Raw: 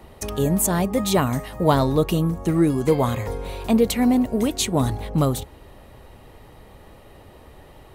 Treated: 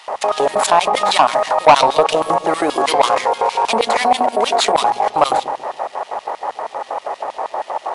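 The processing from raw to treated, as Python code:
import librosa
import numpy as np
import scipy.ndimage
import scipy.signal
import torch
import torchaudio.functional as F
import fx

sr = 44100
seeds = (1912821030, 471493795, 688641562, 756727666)

p1 = scipy.signal.medfilt(x, 15)
p2 = fx.filter_lfo_highpass(p1, sr, shape='square', hz=6.3, low_hz=680.0, high_hz=3200.0, q=1.7)
p3 = fx.peak_eq(p2, sr, hz=900.0, db=11.5, octaves=1.5)
p4 = fx.over_compress(p3, sr, threshold_db=-32.0, ratio=-1.0)
p5 = p3 + F.gain(torch.from_numpy(p4), 2.5).numpy()
p6 = 10.0 ** (-7.0 / 20.0) * np.tanh(p5 / 10.0 ** (-7.0 / 20.0))
p7 = fx.brickwall_lowpass(p6, sr, high_hz=11000.0)
p8 = fx.hum_notches(p7, sr, base_hz=60, count=4)
p9 = p8 + fx.echo_wet_lowpass(p8, sr, ms=139, feedback_pct=42, hz=560.0, wet_db=-8.5, dry=0)
y = F.gain(torch.from_numpy(p9), 5.0).numpy()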